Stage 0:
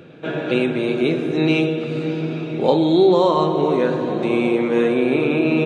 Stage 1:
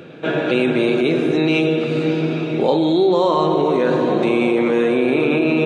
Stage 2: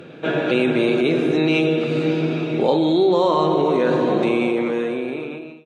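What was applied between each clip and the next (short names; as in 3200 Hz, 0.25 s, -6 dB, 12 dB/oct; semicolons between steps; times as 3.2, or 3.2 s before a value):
low shelf 130 Hz -7.5 dB; in parallel at +1 dB: negative-ratio compressor -22 dBFS; on the sum: gain -2.5 dB
ending faded out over 1.47 s; added harmonics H 3 -42 dB, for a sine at -3.5 dBFS; gain -1 dB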